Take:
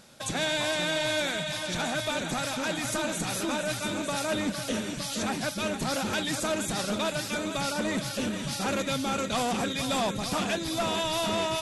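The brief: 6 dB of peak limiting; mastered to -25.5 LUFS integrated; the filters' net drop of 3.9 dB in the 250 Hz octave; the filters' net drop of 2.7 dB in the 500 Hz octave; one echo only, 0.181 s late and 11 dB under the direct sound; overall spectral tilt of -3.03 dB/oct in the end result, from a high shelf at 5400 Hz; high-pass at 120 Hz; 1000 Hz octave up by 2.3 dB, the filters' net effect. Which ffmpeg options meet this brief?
-af "highpass=120,equalizer=f=250:t=o:g=-3.5,equalizer=f=500:t=o:g=-5,equalizer=f=1k:t=o:g=5,highshelf=f=5.4k:g=-7,alimiter=limit=-23.5dB:level=0:latency=1,aecho=1:1:181:0.282,volume=6.5dB"

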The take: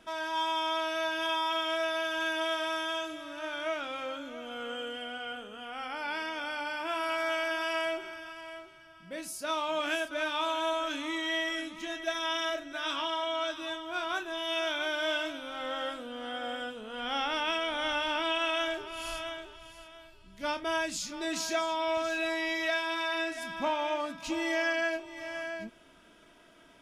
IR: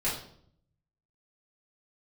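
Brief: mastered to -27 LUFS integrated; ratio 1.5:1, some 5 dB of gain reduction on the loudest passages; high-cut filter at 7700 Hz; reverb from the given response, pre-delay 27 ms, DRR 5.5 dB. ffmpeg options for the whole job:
-filter_complex "[0:a]lowpass=7.7k,acompressor=threshold=-40dB:ratio=1.5,asplit=2[a][b];[1:a]atrim=start_sample=2205,adelay=27[c];[b][c]afir=irnorm=-1:irlink=0,volume=-13.5dB[d];[a][d]amix=inputs=2:normalize=0,volume=8.5dB"

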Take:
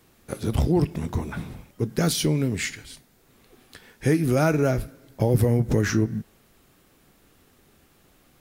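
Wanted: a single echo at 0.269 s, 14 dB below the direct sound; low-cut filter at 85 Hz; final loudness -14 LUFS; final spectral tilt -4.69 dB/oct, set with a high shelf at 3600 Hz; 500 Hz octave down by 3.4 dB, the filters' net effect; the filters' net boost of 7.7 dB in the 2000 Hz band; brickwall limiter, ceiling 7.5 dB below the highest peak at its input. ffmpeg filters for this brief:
-af "highpass=85,equalizer=f=500:t=o:g=-5,equalizer=f=2k:t=o:g=8.5,highshelf=f=3.6k:g=6,alimiter=limit=-14.5dB:level=0:latency=1,aecho=1:1:269:0.2,volume=12.5dB"

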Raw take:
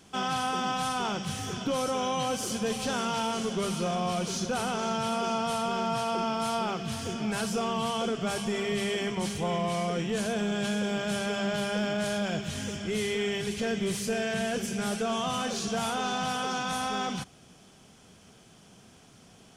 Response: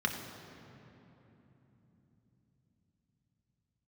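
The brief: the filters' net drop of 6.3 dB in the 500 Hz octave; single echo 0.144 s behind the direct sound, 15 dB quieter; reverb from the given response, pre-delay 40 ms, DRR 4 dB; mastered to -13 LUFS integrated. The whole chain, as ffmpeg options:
-filter_complex "[0:a]equalizer=f=500:t=o:g=-8.5,aecho=1:1:144:0.178,asplit=2[a][b];[1:a]atrim=start_sample=2205,adelay=40[c];[b][c]afir=irnorm=-1:irlink=0,volume=-11.5dB[d];[a][d]amix=inputs=2:normalize=0,volume=16.5dB"

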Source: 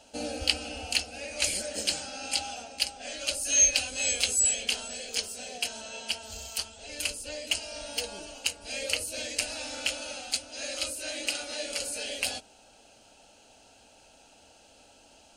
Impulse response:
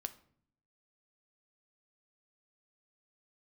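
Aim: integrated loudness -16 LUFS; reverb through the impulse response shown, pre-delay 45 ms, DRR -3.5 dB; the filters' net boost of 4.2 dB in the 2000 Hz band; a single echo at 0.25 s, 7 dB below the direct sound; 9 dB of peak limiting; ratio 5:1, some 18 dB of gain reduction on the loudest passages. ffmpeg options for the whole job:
-filter_complex "[0:a]equalizer=f=2k:t=o:g=6,acompressor=threshold=-39dB:ratio=5,alimiter=level_in=4.5dB:limit=-24dB:level=0:latency=1,volume=-4.5dB,aecho=1:1:250:0.447,asplit=2[a][b];[1:a]atrim=start_sample=2205,adelay=45[c];[b][c]afir=irnorm=-1:irlink=0,volume=5.5dB[d];[a][d]amix=inputs=2:normalize=0,volume=19.5dB"

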